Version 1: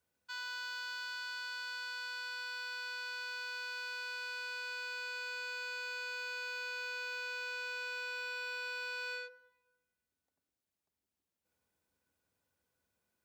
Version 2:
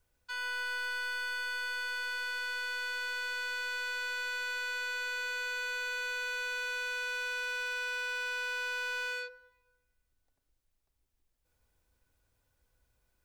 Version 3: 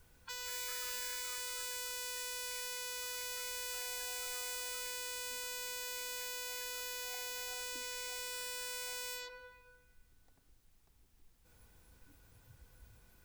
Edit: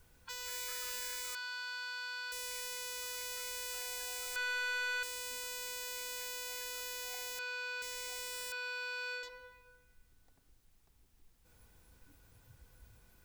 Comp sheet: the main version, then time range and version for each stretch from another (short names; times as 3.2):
3
1.35–2.32 from 1
4.36–5.03 from 2
7.39–7.82 from 1
8.52–9.23 from 1